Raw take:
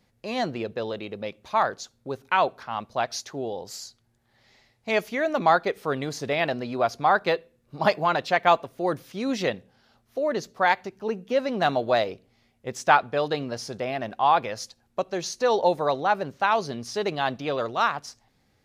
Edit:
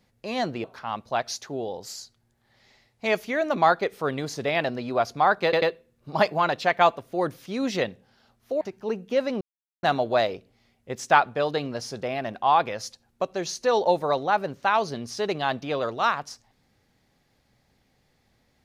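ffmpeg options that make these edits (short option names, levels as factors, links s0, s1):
-filter_complex "[0:a]asplit=6[s0][s1][s2][s3][s4][s5];[s0]atrim=end=0.642[s6];[s1]atrim=start=2.478:end=7.372[s7];[s2]atrim=start=7.278:end=7.372[s8];[s3]atrim=start=7.278:end=10.272[s9];[s4]atrim=start=10.798:end=11.6,asetpts=PTS-STARTPTS,afade=t=out:st=0.798:d=0.004:c=hsin,apad=pad_dur=0.42[s10];[s5]atrim=start=11.6,asetpts=PTS-STARTPTS,afade=t=in:d=0.004:c=hsin[s11];[s6][s7]acrossfade=d=0.004:c1=hsin:c2=hsin[s12];[s12][s8]acrossfade=d=0.004:c1=hsin:c2=hsin[s13];[s13][s9]acrossfade=d=0.004:c1=hsin:c2=hsin[s14];[s10][s11]concat=n=2:v=0:a=1[s15];[s14][s15]acrossfade=d=0.004:c1=hsin:c2=hsin"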